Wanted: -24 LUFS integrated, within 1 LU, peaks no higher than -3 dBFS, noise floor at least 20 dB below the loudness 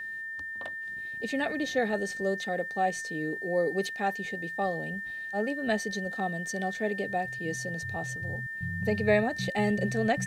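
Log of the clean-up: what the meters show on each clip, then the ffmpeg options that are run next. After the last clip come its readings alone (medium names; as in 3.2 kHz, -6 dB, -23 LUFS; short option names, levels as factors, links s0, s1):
steady tone 1.8 kHz; tone level -35 dBFS; loudness -30.5 LUFS; peak level -12.0 dBFS; loudness target -24.0 LUFS
-> -af "bandreject=f=1800:w=30"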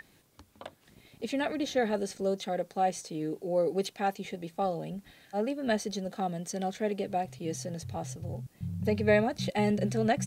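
steady tone not found; loudness -32.0 LUFS; peak level -12.5 dBFS; loudness target -24.0 LUFS
-> -af "volume=2.51"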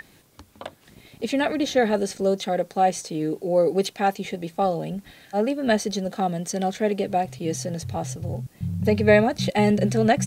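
loudness -24.0 LUFS; peak level -4.5 dBFS; noise floor -56 dBFS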